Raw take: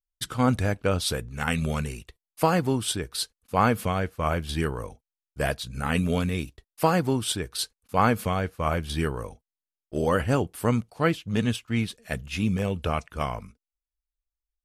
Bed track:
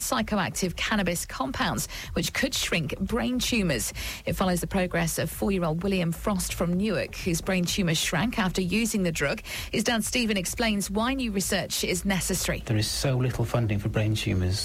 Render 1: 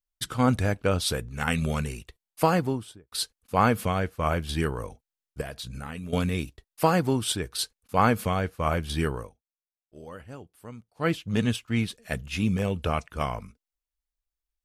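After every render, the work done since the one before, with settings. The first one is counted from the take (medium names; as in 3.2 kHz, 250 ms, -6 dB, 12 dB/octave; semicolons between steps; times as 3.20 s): 2.48–3.12 s: studio fade out; 5.41–6.13 s: compression 12:1, threshold -32 dBFS; 9.15–11.12 s: dip -19 dB, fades 0.18 s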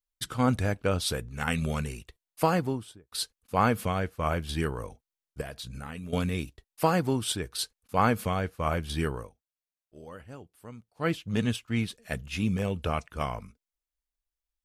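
trim -2.5 dB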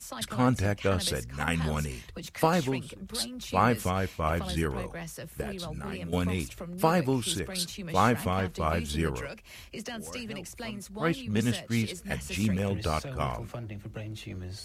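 add bed track -13.5 dB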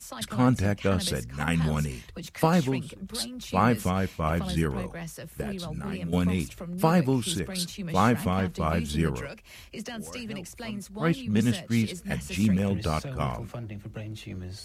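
dynamic bell 180 Hz, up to +6 dB, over -43 dBFS, Q 1.3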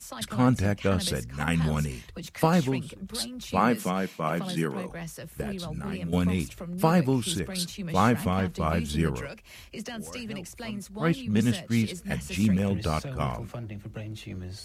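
3.57–4.89 s: high-pass 160 Hz 24 dB/octave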